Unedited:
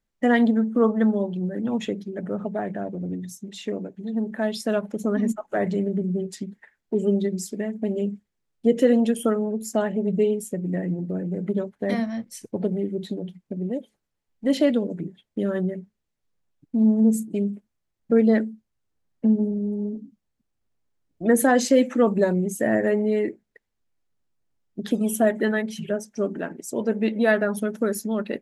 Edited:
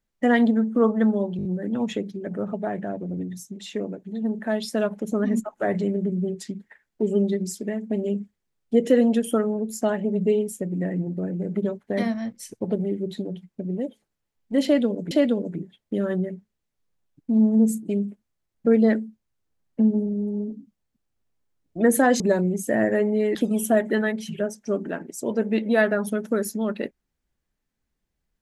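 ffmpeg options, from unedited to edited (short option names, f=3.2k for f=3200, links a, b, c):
-filter_complex "[0:a]asplit=8[a][b][c][d][e][f][g][h];[a]atrim=end=1.392[i];[b]atrim=start=1.368:end=1.392[j];[c]atrim=start=1.368:end=1.392[k];[d]atrim=start=1.368:end=1.392[l];[e]atrim=start=1.368:end=15.032[m];[f]atrim=start=14.558:end=21.652[n];[g]atrim=start=22.118:end=23.272[o];[h]atrim=start=24.848[p];[i][j]acrossfade=d=0.004:c1=hsin:c2=hsin[q];[q][k]acrossfade=d=0.004:c1=hsin:c2=hsin[r];[r][l]acrossfade=d=0.004:c1=hsin:c2=hsin[s];[s][m]acrossfade=d=0.004:c1=hsin:c2=hsin[t];[t][n]acrossfade=d=0.004:c1=hsin:c2=hsin[u];[u][o]acrossfade=d=0.004:c1=hsin:c2=hsin[v];[v][p]acrossfade=d=0.004:c1=hsin:c2=hsin"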